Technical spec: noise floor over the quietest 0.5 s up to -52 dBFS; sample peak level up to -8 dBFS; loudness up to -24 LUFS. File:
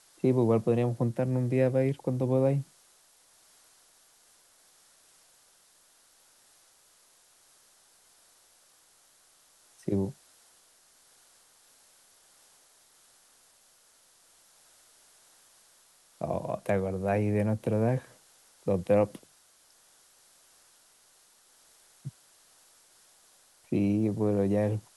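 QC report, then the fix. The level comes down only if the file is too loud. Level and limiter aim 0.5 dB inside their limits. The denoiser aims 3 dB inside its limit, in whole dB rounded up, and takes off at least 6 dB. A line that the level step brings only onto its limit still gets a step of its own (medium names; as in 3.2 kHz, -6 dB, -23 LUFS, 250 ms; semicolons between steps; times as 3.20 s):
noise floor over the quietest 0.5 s -63 dBFS: pass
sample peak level -13.0 dBFS: pass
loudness -28.5 LUFS: pass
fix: none needed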